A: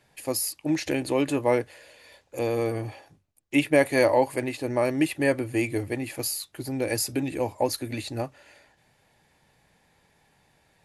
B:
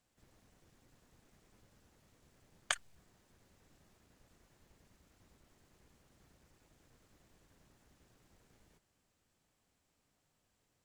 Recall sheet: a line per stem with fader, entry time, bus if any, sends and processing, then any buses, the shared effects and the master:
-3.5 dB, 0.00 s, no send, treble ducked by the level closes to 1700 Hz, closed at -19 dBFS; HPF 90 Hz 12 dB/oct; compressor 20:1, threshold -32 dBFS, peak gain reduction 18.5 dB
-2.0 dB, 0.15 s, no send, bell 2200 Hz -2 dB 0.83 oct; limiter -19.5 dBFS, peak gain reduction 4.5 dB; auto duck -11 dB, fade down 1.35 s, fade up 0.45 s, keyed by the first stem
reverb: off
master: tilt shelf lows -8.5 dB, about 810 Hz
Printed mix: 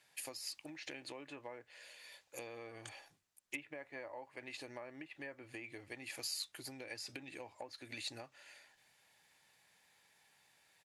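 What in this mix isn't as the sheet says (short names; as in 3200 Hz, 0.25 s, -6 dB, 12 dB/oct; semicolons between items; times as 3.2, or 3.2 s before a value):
stem A -3.5 dB -> -10.0 dB; stem B -2.0 dB -> -9.5 dB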